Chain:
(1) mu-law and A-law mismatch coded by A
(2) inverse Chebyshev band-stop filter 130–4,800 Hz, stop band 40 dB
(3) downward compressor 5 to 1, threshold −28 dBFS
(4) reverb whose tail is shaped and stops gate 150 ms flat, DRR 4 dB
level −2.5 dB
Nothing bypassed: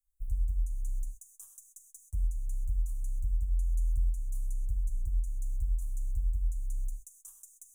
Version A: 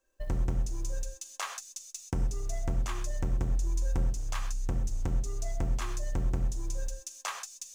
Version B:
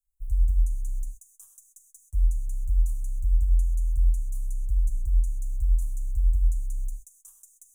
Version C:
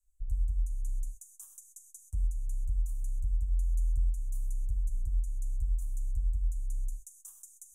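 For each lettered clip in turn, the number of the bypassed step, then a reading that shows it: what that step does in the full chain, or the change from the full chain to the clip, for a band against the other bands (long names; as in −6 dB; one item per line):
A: 2, change in momentary loudness spread −10 LU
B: 3, change in momentary loudness spread −7 LU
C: 1, distortion level −30 dB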